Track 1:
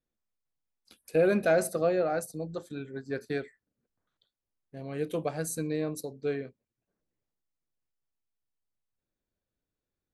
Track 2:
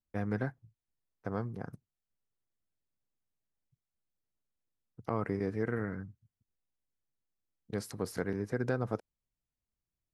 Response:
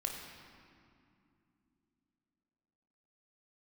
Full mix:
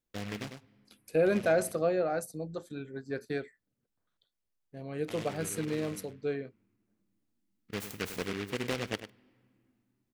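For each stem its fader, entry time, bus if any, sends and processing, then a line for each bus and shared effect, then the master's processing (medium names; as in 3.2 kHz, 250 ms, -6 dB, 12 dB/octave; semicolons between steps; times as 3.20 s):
-2.0 dB, 0.00 s, no send, no echo send, none
-0.5 dB, 0.00 s, send -23.5 dB, echo send -11 dB, ten-band graphic EQ 125 Hz -6 dB, 2 kHz -7 dB, 4 kHz +3 dB, 8 kHz +6 dB; delay time shaken by noise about 1.9 kHz, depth 0.22 ms; auto duck -11 dB, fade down 1.10 s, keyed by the first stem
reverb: on, RT60 2.6 s, pre-delay 20 ms
echo: delay 100 ms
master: none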